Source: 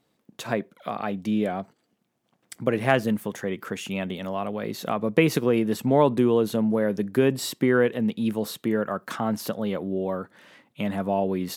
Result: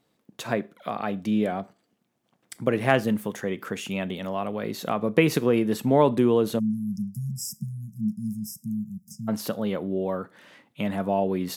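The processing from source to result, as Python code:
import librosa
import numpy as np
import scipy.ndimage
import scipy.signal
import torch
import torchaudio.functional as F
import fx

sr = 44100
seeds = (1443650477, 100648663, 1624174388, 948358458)

y = fx.rev_schroeder(x, sr, rt60_s=0.32, comb_ms=26, drr_db=19.0)
y = fx.spec_erase(y, sr, start_s=6.59, length_s=2.69, low_hz=220.0, high_hz=4900.0)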